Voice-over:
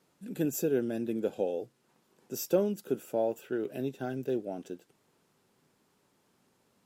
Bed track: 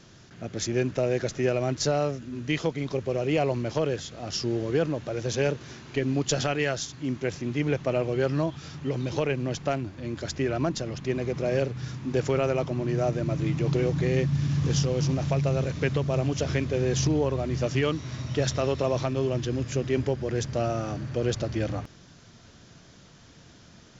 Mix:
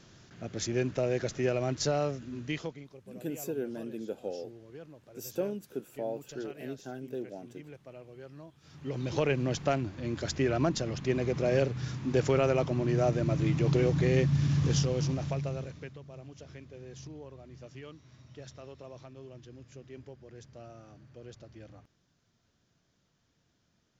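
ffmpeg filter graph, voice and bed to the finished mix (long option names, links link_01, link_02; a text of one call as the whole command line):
ffmpeg -i stem1.wav -i stem2.wav -filter_complex "[0:a]adelay=2850,volume=-6dB[link_01];[1:a]volume=17.5dB,afade=type=out:start_time=2.32:duration=0.57:silence=0.11885,afade=type=in:start_time=8.6:duration=0.67:silence=0.0841395,afade=type=out:start_time=14.5:duration=1.43:silence=0.0944061[link_02];[link_01][link_02]amix=inputs=2:normalize=0" out.wav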